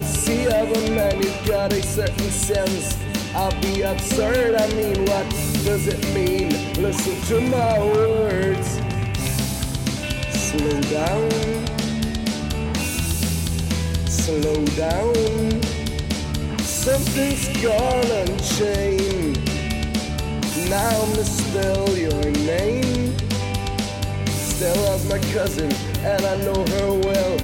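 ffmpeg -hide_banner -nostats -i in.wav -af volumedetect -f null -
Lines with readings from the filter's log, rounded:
mean_volume: -20.8 dB
max_volume: -7.4 dB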